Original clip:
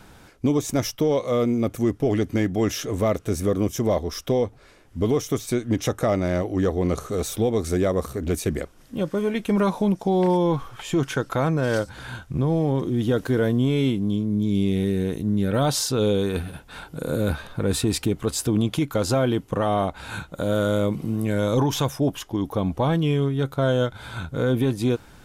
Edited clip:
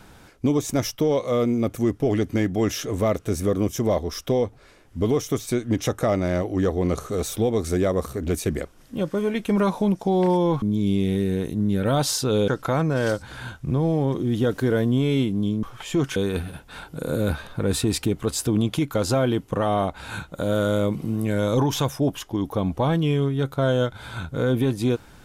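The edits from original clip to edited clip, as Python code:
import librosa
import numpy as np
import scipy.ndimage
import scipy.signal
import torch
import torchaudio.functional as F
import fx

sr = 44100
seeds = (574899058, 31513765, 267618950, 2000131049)

y = fx.edit(x, sr, fx.swap(start_s=10.62, length_s=0.53, other_s=14.3, other_length_s=1.86), tone=tone)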